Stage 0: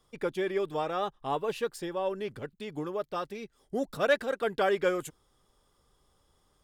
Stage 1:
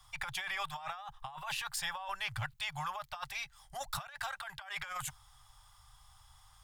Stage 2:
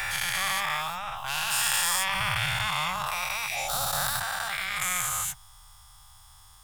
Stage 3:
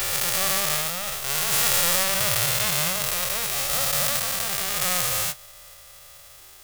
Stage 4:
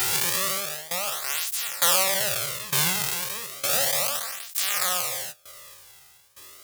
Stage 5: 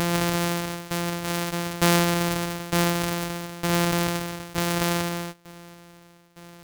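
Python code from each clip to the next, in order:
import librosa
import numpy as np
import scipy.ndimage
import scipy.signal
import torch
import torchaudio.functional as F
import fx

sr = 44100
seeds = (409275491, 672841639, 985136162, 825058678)

y1 = scipy.signal.sosfilt(scipy.signal.ellip(3, 1.0, 40, [120.0, 800.0], 'bandstop', fs=sr, output='sos'), x)
y1 = fx.over_compress(y1, sr, threshold_db=-45.0, ratio=-1.0)
y1 = y1 * librosa.db_to_amplitude(4.0)
y2 = fx.spec_dilate(y1, sr, span_ms=480)
y2 = fx.high_shelf(y2, sr, hz=8200.0, db=10.0)
y3 = fx.envelope_flatten(y2, sr, power=0.1)
y3 = y3 * librosa.db_to_amplitude(5.0)
y4 = fx.tremolo_shape(y3, sr, shape='saw_down', hz=1.1, depth_pct=90)
y4 = fx.flanger_cancel(y4, sr, hz=0.33, depth_ms=1.8)
y4 = y4 * librosa.db_to_amplitude(5.5)
y5 = np.r_[np.sort(y4[:len(y4) // 256 * 256].reshape(-1, 256), axis=1).ravel(), y4[len(y4) // 256 * 256:]]
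y5 = y5 * librosa.db_to_amplitude(1.0)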